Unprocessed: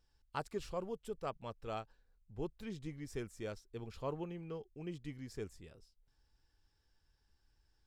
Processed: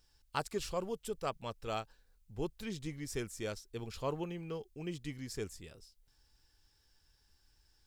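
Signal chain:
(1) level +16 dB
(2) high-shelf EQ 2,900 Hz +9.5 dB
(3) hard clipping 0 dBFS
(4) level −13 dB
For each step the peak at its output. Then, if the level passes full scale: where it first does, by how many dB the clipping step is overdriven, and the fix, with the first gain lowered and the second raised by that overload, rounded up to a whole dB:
−7.0, −4.0, −4.0, −17.0 dBFS
no step passes full scale

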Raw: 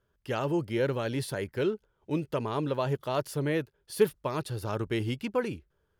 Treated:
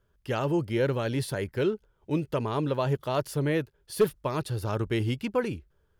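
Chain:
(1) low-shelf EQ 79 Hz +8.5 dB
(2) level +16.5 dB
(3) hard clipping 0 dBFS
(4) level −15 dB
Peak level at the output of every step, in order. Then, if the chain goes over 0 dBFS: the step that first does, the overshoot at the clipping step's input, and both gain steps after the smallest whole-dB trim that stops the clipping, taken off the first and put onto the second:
−11.0, +5.5, 0.0, −15.0 dBFS
step 2, 5.5 dB
step 2 +10.5 dB, step 4 −9 dB

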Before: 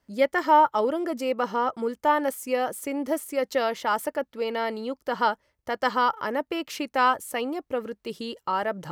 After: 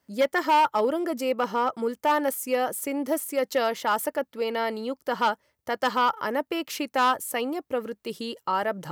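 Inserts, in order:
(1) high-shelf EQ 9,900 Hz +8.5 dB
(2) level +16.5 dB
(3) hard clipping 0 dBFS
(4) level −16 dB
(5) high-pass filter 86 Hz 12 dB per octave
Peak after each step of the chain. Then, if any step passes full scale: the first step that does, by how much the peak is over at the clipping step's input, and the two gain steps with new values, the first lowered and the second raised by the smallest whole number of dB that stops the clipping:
−8.0, +8.5, 0.0, −16.0, −14.0 dBFS
step 2, 8.5 dB
step 2 +7.5 dB, step 4 −7 dB

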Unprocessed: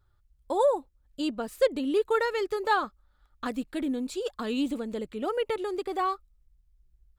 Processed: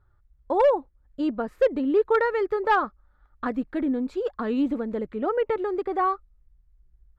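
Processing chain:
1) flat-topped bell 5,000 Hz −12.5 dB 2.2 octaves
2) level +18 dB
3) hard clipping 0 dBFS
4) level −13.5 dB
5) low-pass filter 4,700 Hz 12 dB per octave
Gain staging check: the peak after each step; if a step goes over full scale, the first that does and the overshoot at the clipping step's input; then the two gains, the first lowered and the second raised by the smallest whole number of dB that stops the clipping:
−12.5, +5.5, 0.0, −13.5, −13.0 dBFS
step 2, 5.5 dB
step 2 +12 dB, step 4 −7.5 dB

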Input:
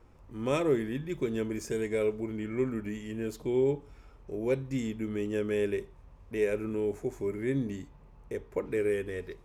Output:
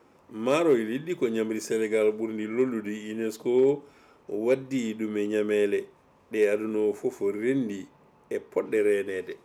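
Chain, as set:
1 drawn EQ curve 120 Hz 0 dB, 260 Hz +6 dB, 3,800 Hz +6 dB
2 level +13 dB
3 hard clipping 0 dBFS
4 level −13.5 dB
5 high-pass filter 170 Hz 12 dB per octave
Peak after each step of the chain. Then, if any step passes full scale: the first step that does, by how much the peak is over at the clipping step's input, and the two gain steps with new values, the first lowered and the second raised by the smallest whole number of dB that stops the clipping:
−10.0, +3.0, 0.0, −13.5, −10.5 dBFS
step 2, 3.0 dB
step 2 +10 dB, step 4 −10.5 dB

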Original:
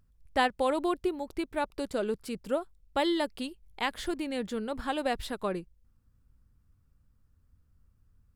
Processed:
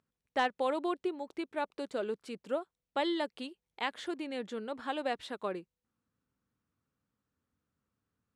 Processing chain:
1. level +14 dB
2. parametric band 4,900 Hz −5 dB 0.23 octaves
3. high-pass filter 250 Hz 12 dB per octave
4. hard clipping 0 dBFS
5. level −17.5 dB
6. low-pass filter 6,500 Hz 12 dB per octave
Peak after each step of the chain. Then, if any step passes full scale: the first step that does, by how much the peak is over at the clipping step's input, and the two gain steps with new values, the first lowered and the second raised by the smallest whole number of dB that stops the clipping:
+2.0, +2.0, +3.5, 0.0, −17.5, −17.0 dBFS
step 1, 3.5 dB
step 1 +10 dB, step 5 −13.5 dB

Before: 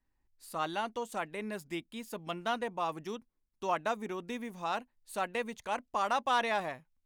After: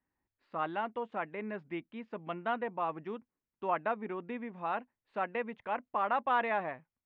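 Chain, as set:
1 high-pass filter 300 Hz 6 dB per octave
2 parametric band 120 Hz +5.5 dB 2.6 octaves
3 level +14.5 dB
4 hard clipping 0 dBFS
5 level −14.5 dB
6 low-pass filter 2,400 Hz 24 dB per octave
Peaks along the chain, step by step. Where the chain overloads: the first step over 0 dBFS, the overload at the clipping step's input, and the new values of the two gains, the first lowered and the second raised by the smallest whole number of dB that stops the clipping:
−18.0, −18.0, −3.5, −3.5, −18.0, −18.5 dBFS
no step passes full scale

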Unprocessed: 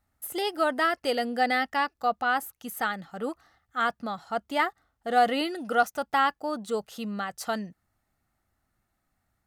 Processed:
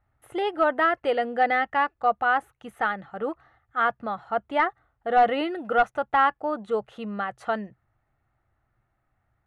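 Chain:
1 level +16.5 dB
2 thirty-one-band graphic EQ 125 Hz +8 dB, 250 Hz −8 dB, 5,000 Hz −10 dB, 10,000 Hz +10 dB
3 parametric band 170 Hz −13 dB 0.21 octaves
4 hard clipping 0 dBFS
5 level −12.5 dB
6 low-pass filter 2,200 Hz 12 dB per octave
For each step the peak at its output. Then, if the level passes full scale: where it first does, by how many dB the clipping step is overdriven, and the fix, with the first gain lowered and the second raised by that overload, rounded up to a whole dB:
+7.0, +7.0, +7.0, 0.0, −12.5, −12.0 dBFS
step 1, 7.0 dB
step 1 +9.5 dB, step 5 −5.5 dB

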